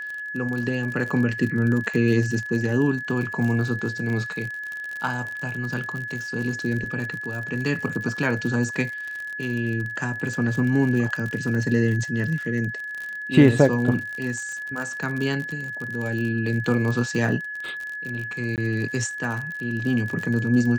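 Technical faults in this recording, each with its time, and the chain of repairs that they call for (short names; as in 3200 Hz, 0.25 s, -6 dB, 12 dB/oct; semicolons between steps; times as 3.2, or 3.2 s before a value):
crackle 50/s -29 dBFS
tone 1700 Hz -30 dBFS
18.56–18.58 gap 18 ms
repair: de-click; notch 1700 Hz, Q 30; interpolate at 18.56, 18 ms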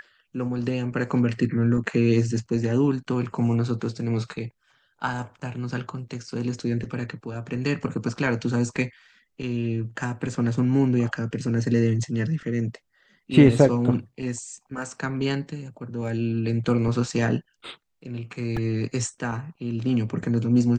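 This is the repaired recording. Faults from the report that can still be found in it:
none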